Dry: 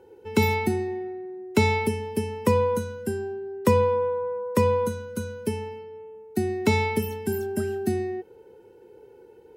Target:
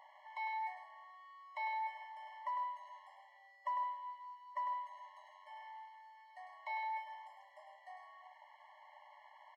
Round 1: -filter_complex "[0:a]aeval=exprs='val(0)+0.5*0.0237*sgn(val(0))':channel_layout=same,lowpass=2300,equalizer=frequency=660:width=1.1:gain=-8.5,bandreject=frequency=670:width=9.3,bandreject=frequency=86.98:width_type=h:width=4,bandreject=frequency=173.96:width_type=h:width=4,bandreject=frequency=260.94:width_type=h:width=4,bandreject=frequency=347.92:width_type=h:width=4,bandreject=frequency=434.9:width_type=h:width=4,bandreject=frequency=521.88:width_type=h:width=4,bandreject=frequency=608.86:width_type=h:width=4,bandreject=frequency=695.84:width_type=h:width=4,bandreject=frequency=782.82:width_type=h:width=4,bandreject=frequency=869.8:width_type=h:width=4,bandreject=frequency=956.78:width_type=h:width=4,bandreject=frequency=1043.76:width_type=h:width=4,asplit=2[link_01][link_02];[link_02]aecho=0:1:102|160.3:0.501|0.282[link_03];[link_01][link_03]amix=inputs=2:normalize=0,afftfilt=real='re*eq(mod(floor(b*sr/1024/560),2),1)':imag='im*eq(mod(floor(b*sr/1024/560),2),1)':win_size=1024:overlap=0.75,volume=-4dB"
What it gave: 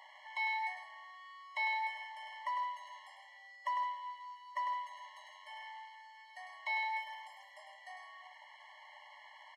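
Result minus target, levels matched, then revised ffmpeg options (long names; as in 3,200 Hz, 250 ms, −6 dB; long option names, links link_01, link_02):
2,000 Hz band +5.5 dB
-filter_complex "[0:a]aeval=exprs='val(0)+0.5*0.0237*sgn(val(0))':channel_layout=same,lowpass=1100,equalizer=frequency=660:width=1.1:gain=-8.5,bandreject=frequency=670:width=9.3,bandreject=frequency=86.98:width_type=h:width=4,bandreject=frequency=173.96:width_type=h:width=4,bandreject=frequency=260.94:width_type=h:width=4,bandreject=frequency=347.92:width_type=h:width=4,bandreject=frequency=434.9:width_type=h:width=4,bandreject=frequency=521.88:width_type=h:width=4,bandreject=frequency=608.86:width_type=h:width=4,bandreject=frequency=695.84:width_type=h:width=4,bandreject=frequency=782.82:width_type=h:width=4,bandreject=frequency=869.8:width_type=h:width=4,bandreject=frequency=956.78:width_type=h:width=4,bandreject=frequency=1043.76:width_type=h:width=4,asplit=2[link_01][link_02];[link_02]aecho=0:1:102|160.3:0.501|0.282[link_03];[link_01][link_03]amix=inputs=2:normalize=0,afftfilt=real='re*eq(mod(floor(b*sr/1024/560),2),1)':imag='im*eq(mod(floor(b*sr/1024/560),2),1)':win_size=1024:overlap=0.75,volume=-4dB"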